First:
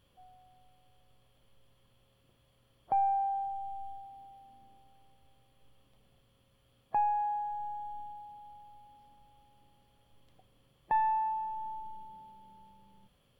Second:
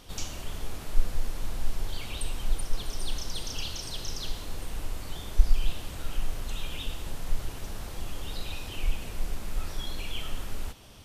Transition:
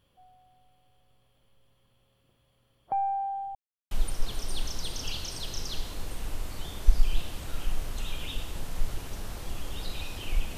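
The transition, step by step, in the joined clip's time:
first
3.55–3.91 mute
3.91 switch to second from 2.42 s

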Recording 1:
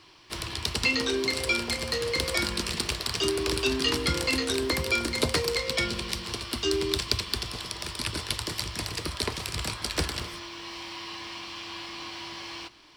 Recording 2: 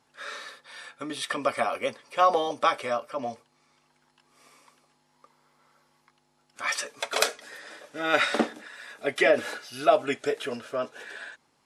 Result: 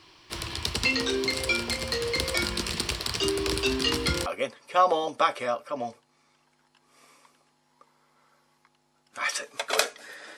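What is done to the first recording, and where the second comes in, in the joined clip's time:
recording 1
4.26 switch to recording 2 from 1.69 s

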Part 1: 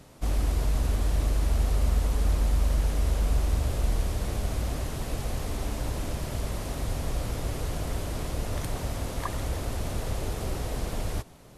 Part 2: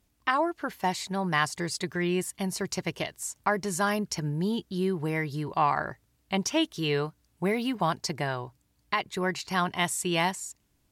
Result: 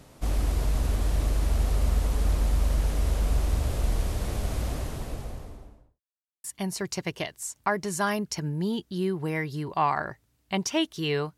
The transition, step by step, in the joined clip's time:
part 1
4.62–6.01 studio fade out
6.01–6.44 mute
6.44 switch to part 2 from 2.24 s

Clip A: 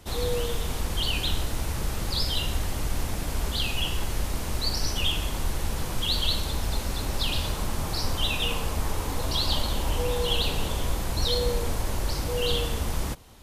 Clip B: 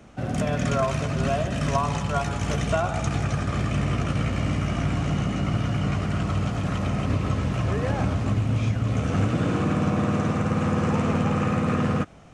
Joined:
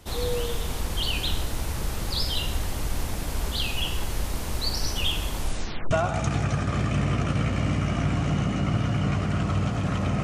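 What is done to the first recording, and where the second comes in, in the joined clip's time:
clip A
5.38 tape stop 0.53 s
5.91 switch to clip B from 2.71 s

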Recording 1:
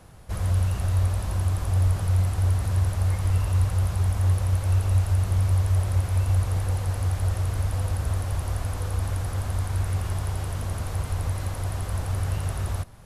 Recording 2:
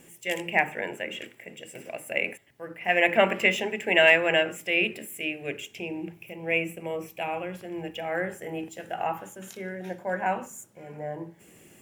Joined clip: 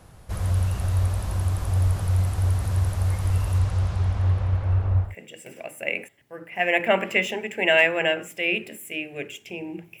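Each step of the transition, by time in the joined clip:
recording 1
3.58–5.15 LPF 8500 Hz -> 1200 Hz
5.07 switch to recording 2 from 1.36 s, crossfade 0.16 s

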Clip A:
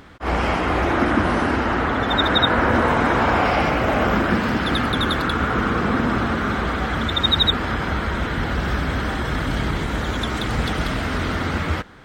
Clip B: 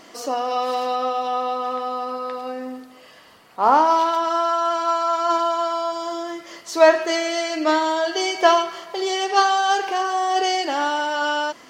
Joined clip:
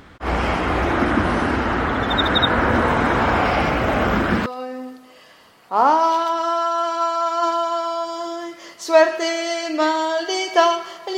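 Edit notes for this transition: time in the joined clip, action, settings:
clip A
4.46 switch to clip B from 2.33 s

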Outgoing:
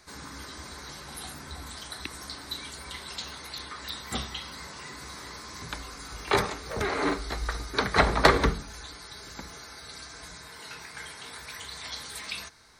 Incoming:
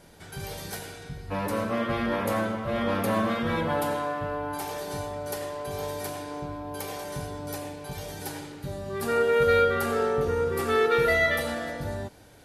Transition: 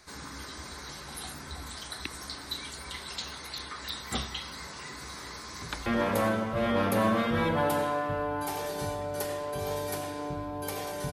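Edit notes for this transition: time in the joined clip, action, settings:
outgoing
5.17–5.86 echo throw 0.43 s, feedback 45%, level -10 dB
5.86 switch to incoming from 1.98 s

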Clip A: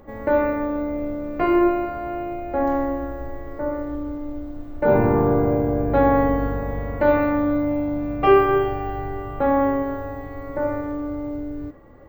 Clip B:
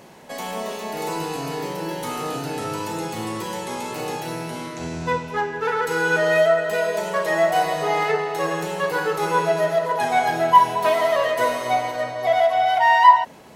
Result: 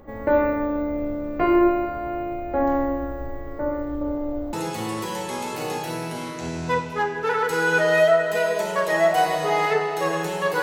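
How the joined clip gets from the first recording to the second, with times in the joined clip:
clip A
4.01–4.53 bell 640 Hz +9 dB 1.4 oct
4.53 switch to clip B from 2.91 s

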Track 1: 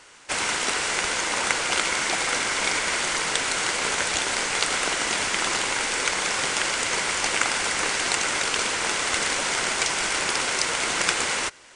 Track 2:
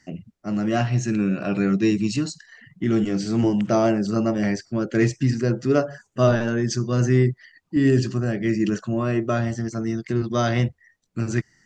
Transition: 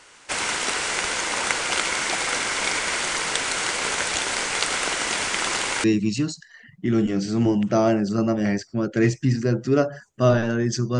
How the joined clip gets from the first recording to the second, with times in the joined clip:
track 1
5.84 switch to track 2 from 1.82 s

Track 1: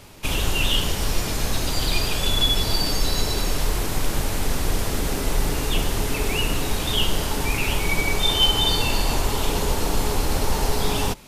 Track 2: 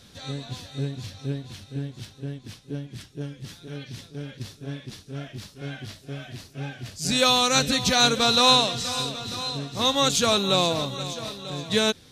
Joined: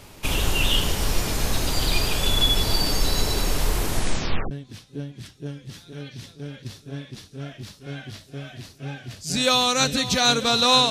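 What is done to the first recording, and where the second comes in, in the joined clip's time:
track 1
3.89 tape stop 0.62 s
4.51 switch to track 2 from 2.26 s

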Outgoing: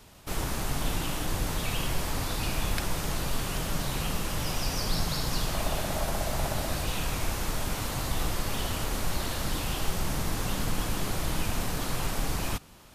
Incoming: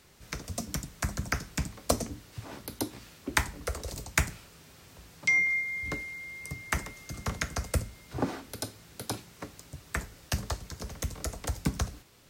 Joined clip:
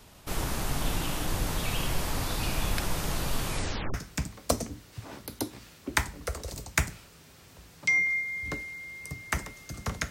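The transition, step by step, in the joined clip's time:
outgoing
3.46 tape stop 0.48 s
3.94 switch to incoming from 1.34 s

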